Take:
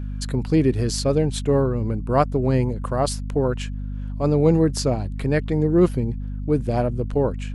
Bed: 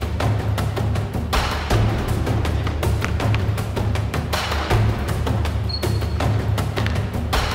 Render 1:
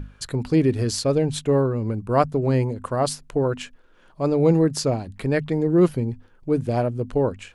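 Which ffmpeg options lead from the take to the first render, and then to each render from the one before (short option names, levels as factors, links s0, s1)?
-af "bandreject=f=50:t=h:w=6,bandreject=f=100:t=h:w=6,bandreject=f=150:t=h:w=6,bandreject=f=200:t=h:w=6,bandreject=f=250:t=h:w=6"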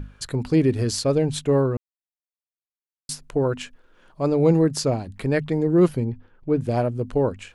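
-filter_complex "[0:a]asettb=1/sr,asplit=3[s0][s1][s2];[s0]atrim=end=6.044[s3];[s1]atrim=start=6.04:end=6.61,asetpts=PTS-STARTPTS,afade=t=in:d=0.004:c=qsin,afade=t=out:st=0.566:d=0.004:c=qsin,lowpass=3500[s4];[s2]atrim=start=6.606[s5];[s3][s4]acrossfade=d=0.004:c1=hsin:c2=qsin[s6];[s6][s5]acrossfade=d=0.004:c1=qsin:c2=hsin,asplit=3[s7][s8][s9];[s7]atrim=end=1.77,asetpts=PTS-STARTPTS,afade=t=out:st=1.766:d=0.004:c=hsin[s10];[s8]atrim=start=1.77:end=3.09,asetpts=PTS-STARTPTS,volume=0[s11];[s9]atrim=start=3.09,asetpts=PTS-STARTPTS,afade=t=in:d=0.004:c=hsin[s12];[s10][s11][s12]concat=n=3:v=0:a=1"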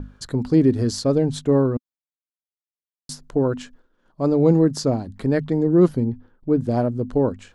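-af "agate=range=0.0224:threshold=0.00501:ratio=3:detection=peak,equalizer=f=250:t=o:w=0.67:g=6,equalizer=f=2500:t=o:w=0.67:g=-9,equalizer=f=10000:t=o:w=0.67:g=-7"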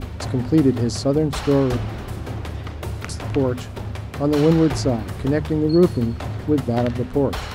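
-filter_complex "[1:a]volume=0.376[s0];[0:a][s0]amix=inputs=2:normalize=0"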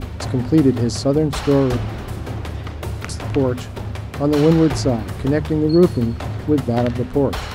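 -af "volume=1.26"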